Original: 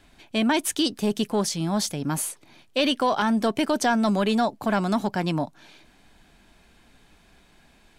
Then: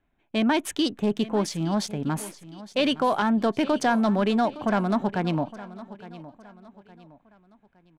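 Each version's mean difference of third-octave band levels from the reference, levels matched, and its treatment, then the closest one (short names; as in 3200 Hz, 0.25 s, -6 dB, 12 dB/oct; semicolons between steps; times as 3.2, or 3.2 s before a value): 5.0 dB: Wiener smoothing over 9 samples; gate -48 dBFS, range -16 dB; high shelf 6200 Hz -10 dB; on a send: feedback echo 0.863 s, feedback 38%, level -17 dB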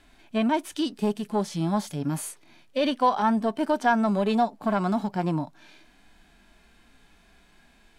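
3.5 dB: compressor 2.5:1, threshold -24 dBFS, peak gain reduction 5 dB; bell 1700 Hz +2.5 dB 1.4 oct; harmonic-percussive split percussive -16 dB; dynamic EQ 900 Hz, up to +6 dB, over -41 dBFS, Q 1.1; gain +1.5 dB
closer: second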